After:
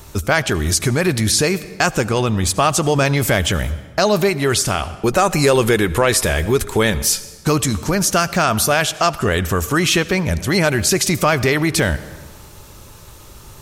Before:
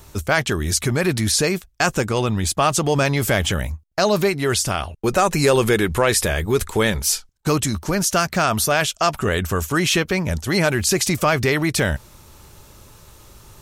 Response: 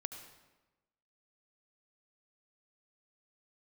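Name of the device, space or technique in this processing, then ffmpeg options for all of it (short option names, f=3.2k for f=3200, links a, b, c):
ducked reverb: -filter_complex "[0:a]asplit=3[a][b][c];[1:a]atrim=start_sample=2205[d];[b][d]afir=irnorm=-1:irlink=0[e];[c]apad=whole_len=600505[f];[e][f]sidechaincompress=threshold=-20dB:ratio=8:attack=8.6:release=488,volume=0.5dB[g];[a][g]amix=inputs=2:normalize=0"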